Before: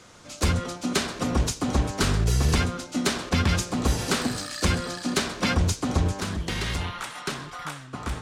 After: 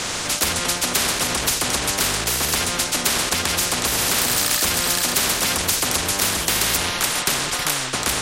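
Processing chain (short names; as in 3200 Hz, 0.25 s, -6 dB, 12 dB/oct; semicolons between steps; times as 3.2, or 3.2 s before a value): 4.18–6.77 high shelf 7600 Hz +9 dB; maximiser +20.5 dB; spectral compressor 4:1; gain -1 dB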